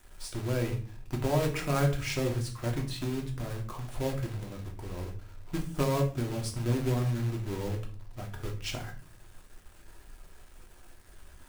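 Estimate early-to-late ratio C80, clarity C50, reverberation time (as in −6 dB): 15.0 dB, 10.0 dB, 0.40 s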